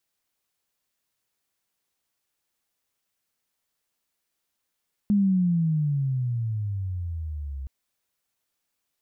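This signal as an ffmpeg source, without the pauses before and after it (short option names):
-f lavfi -i "aevalsrc='pow(10,(-17-14*t/2.57)/20)*sin(2*PI*208*2.57/(-20*log(2)/12)*(exp(-20*log(2)/12*t/2.57)-1))':d=2.57:s=44100"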